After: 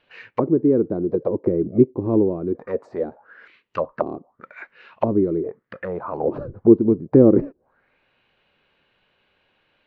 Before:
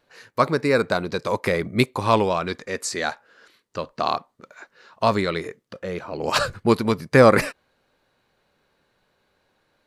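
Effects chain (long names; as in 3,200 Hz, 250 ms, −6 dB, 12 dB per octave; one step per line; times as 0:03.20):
envelope-controlled low-pass 340–2,900 Hz down, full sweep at −21 dBFS
level −1 dB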